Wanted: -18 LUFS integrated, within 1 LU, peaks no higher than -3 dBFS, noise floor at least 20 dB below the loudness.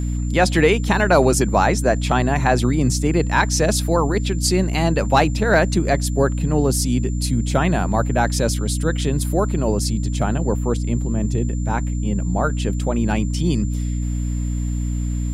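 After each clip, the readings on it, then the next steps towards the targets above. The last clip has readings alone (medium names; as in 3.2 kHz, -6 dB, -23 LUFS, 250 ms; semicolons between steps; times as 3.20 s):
hum 60 Hz; highest harmonic 300 Hz; hum level -20 dBFS; steady tone 7.2 kHz; tone level -41 dBFS; loudness -19.5 LUFS; peak level -2.0 dBFS; loudness target -18.0 LUFS
-> hum notches 60/120/180/240/300 Hz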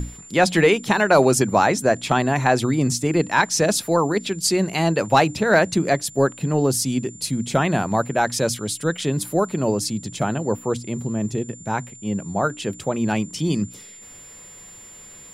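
hum not found; steady tone 7.2 kHz; tone level -41 dBFS
-> band-stop 7.2 kHz, Q 30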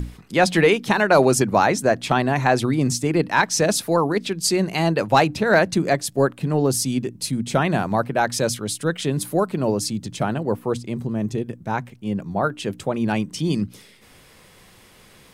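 steady tone not found; loudness -21.0 LUFS; peak level -3.0 dBFS; loudness target -18.0 LUFS
-> trim +3 dB; peak limiter -3 dBFS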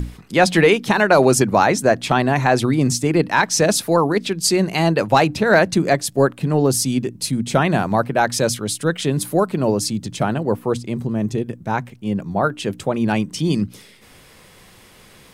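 loudness -18.5 LUFS; peak level -3.0 dBFS; noise floor -48 dBFS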